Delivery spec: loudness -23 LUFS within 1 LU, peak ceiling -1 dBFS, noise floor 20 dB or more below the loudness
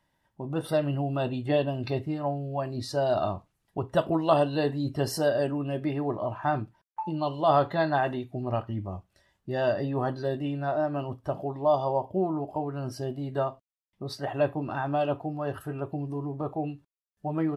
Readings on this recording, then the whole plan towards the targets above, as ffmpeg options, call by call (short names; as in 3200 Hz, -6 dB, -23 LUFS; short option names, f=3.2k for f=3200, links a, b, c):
loudness -29.0 LUFS; peak -9.0 dBFS; loudness target -23.0 LUFS
-> -af "volume=6dB"